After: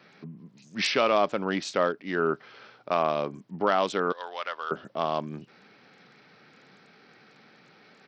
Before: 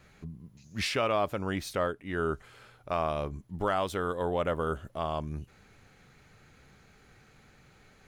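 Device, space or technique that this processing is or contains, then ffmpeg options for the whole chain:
Bluetooth headset: -filter_complex "[0:a]asettb=1/sr,asplit=3[link_01][link_02][link_03];[link_01]atrim=end=4.124[link_04];[link_02]atrim=start=4.12:end=4.71,asetpts=PTS-STARTPTS,afade=type=in:duration=0.004:curve=qsin,afade=type=out:start_time=0.586:duration=0.004:curve=qsin,highpass=1300[link_05];[link_03]atrim=start=4.706[link_06];[link_04][link_05]acrossfade=duration=0.004:curve1=hsin:curve2=qsin[link_07];[link_07][link_06]acrossfade=duration=0.004:curve1=qsin:curve2=hsin,highpass=frequency=180:width=0.5412,highpass=frequency=180:width=1.3066,aresample=16000,aresample=44100,volume=5dB" -ar 44100 -c:a sbc -b:a 64k

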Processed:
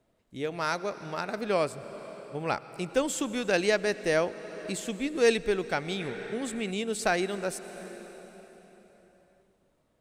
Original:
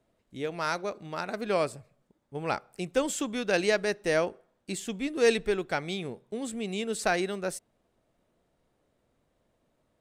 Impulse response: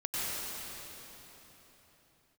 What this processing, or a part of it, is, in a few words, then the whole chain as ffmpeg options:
ducked reverb: -filter_complex "[0:a]asplit=3[link_01][link_02][link_03];[1:a]atrim=start_sample=2205[link_04];[link_02][link_04]afir=irnorm=-1:irlink=0[link_05];[link_03]apad=whole_len=441055[link_06];[link_05][link_06]sidechaincompress=threshold=-32dB:ratio=3:attack=10:release=489,volume=-16dB[link_07];[link_01][link_07]amix=inputs=2:normalize=0,asettb=1/sr,asplit=3[link_08][link_09][link_10];[link_08]atrim=end=6.004[link_11];[link_09]atrim=start=6:end=6.71,asetpts=PTS-STARTPTS,afade=type=in:duration=0.004:curve=qsin,afade=type=out:start_time=0.706:duration=0.004:curve=qsin,equalizer=frequency=1800:width=1.9:gain=10.5[link_12];[link_10]atrim=start=6.706[link_13];[link_11][link_12]acrossfade=duration=0.004:curve1=hsin:curve2=qsin[link_14];[link_14][link_13]acrossfade=duration=0.004:curve1=qsin:curve2=hsin"

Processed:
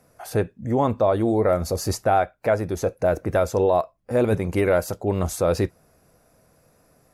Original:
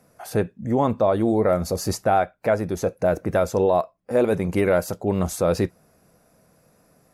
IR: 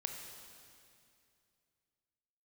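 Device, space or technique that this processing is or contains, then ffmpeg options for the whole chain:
low shelf boost with a cut just above: -filter_complex "[0:a]lowshelf=frequency=85:gain=6,equalizer=frequency=190:width_type=o:width=0.6:gain=-5.5,asettb=1/sr,asplit=3[link_01][link_02][link_03];[link_01]atrim=end=3.774[link_04];[link_02]atrim=start=3.77:end=4.35,asetpts=PTS-STARTPTS,afade=type=in:duration=0.004:curve=qsin,afade=type=out:start_time=0.576:duration=0.004:curve=qsin,asubboost=boost=11:cutoff=240[link_05];[link_03]atrim=start=4.346[link_06];[link_04][link_05]acrossfade=duration=0.004:curve1=hsin:curve2=qsin[link_07];[link_07][link_06]acrossfade=duration=0.004:curve1=qsin:curve2=hsin"

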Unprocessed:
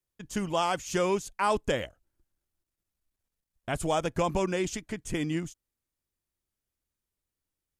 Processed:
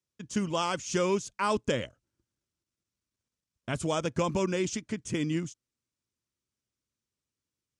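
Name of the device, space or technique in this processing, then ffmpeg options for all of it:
car door speaker: -af "highpass=83,equalizer=frequency=120:width_type=q:width=4:gain=5,equalizer=frequency=230:width_type=q:width=4:gain=4,equalizer=frequency=750:width_type=q:width=4:gain=-9,equalizer=frequency=1800:width_type=q:width=4:gain=-3,equalizer=frequency=5700:width_type=q:width=4:gain=4,lowpass=frequency=8800:width=0.5412,lowpass=frequency=8800:width=1.3066"

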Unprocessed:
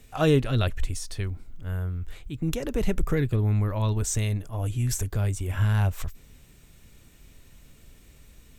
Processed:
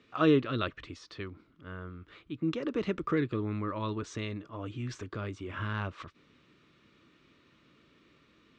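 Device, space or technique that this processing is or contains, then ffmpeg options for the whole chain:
kitchen radio: -filter_complex "[0:a]highpass=190,equalizer=frequency=320:width_type=q:width=4:gain=7,equalizer=frequency=760:width_type=q:width=4:gain=-9,equalizer=frequency=1200:width_type=q:width=4:gain=10,lowpass=frequency=4300:width=0.5412,lowpass=frequency=4300:width=1.3066,asettb=1/sr,asplit=3[link_01][link_02][link_03];[link_01]atrim=end=2.734[link_04];[link_02]atrim=start=2.73:end=3.65,asetpts=PTS-STARTPTS,afade=type=in:duration=0.004:curve=qsin,afade=type=out:start_time=0.916:duration=0.004:curve=qsin,highshelf=frequency=4900:gain=5[link_05];[link_03]atrim=start=3.646[link_06];[link_04][link_05]acrossfade=duration=0.004:curve1=hsin:curve2=qsin[link_07];[link_07][link_06]acrossfade=duration=0.004:curve1=qsin:curve2=hsin,volume=-4dB"

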